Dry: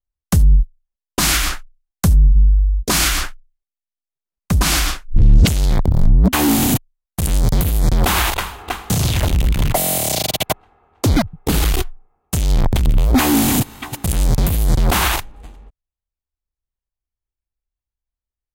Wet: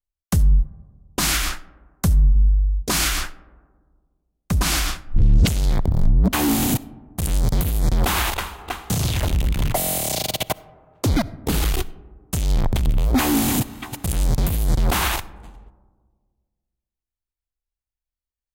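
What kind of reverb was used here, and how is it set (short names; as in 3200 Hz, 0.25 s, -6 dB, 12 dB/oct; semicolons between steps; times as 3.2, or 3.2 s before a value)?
digital reverb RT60 1.7 s, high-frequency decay 0.25×, pre-delay 20 ms, DRR 19 dB; gain -4.5 dB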